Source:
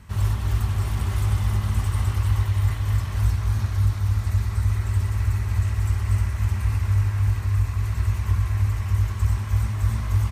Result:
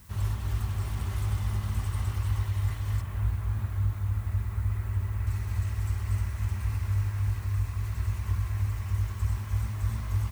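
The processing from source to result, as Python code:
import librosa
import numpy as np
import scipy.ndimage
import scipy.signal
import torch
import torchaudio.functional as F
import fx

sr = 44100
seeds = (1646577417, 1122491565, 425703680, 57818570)

y = fx.moving_average(x, sr, points=8, at=(3.01, 5.27))
y = fx.dmg_noise_colour(y, sr, seeds[0], colour='blue', level_db=-51.0)
y = F.gain(torch.from_numpy(y), -7.0).numpy()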